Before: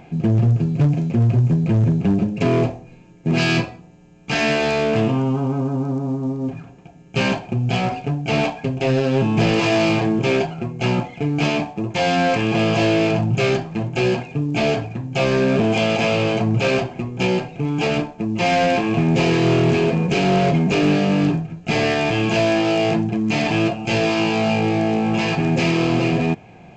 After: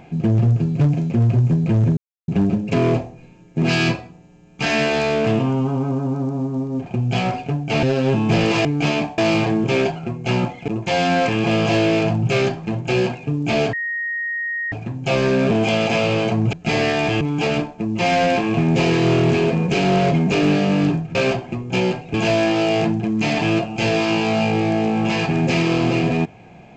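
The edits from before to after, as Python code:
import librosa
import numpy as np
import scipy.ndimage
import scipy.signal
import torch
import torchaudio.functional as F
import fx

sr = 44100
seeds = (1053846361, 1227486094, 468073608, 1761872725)

y = fx.edit(x, sr, fx.insert_silence(at_s=1.97, length_s=0.31),
    fx.cut(start_s=6.55, length_s=0.89),
    fx.cut(start_s=8.41, length_s=0.5),
    fx.move(start_s=11.23, length_s=0.53, to_s=9.73),
    fx.insert_tone(at_s=14.81, length_s=0.99, hz=1870.0, db=-21.5),
    fx.swap(start_s=16.62, length_s=0.99, other_s=21.55, other_length_s=0.68), tone=tone)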